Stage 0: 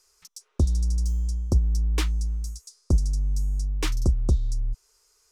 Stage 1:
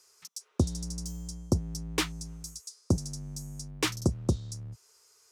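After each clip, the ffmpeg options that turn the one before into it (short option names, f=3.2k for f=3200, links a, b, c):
-af "highpass=f=100:w=0.5412,highpass=f=100:w=1.3066,volume=2dB"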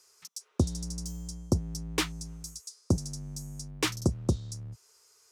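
-af anull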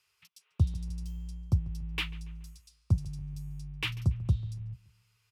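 -filter_complex "[0:a]firequalizer=gain_entry='entry(120,0);entry(260,-20);entry(480,-20);entry(840,-13);entry(1600,-10);entry(2700,1);entry(4200,-12);entry(6200,-23);entry(12000,-14)':delay=0.05:min_phase=1,asplit=2[a][b];[b]adelay=142,lowpass=f=2.8k:p=1,volume=-19.5dB,asplit=2[c][d];[d]adelay=142,lowpass=f=2.8k:p=1,volume=0.48,asplit=2[e][f];[f]adelay=142,lowpass=f=2.8k:p=1,volume=0.48,asplit=2[g][h];[h]adelay=142,lowpass=f=2.8k:p=1,volume=0.48[i];[a][c][e][g][i]amix=inputs=5:normalize=0,volume=3dB"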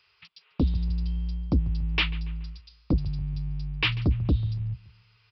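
-af "equalizer=f=140:w=2.4:g=-3,aresample=11025,aeval=exprs='0.178*sin(PI/2*2.51*val(0)/0.178)':c=same,aresample=44100,volume=-1.5dB"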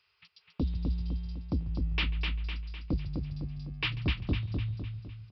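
-af "aecho=1:1:253|506|759|1012|1265|1518:0.596|0.286|0.137|0.0659|0.0316|0.0152,volume=-7dB"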